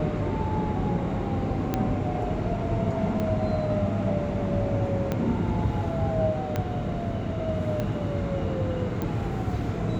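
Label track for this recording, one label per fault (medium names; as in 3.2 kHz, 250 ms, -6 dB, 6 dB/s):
1.740000	1.740000	pop -12 dBFS
3.200000	3.200000	pop -17 dBFS
5.120000	5.120000	pop -14 dBFS
6.560000	6.560000	pop -14 dBFS
7.800000	7.800000	pop -16 dBFS
9.020000	9.020000	pop -17 dBFS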